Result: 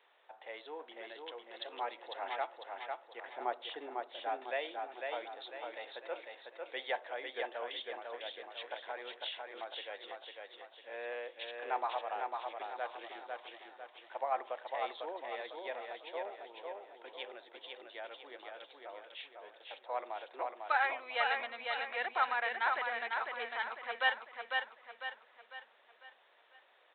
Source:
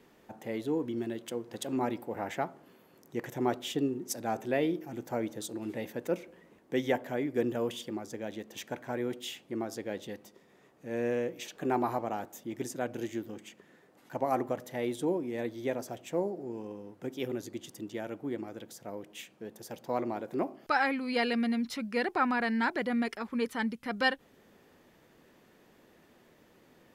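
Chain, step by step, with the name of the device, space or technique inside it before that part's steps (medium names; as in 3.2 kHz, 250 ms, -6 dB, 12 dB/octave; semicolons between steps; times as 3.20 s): high-pass 110 Hz; 3.23–4.29 s: RIAA curve playback; feedback delay 500 ms, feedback 44%, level -4 dB; musical greeting card (resampled via 8 kHz; high-pass 620 Hz 24 dB/octave; peaking EQ 3.9 kHz +7 dB 0.37 oct); trim -2.5 dB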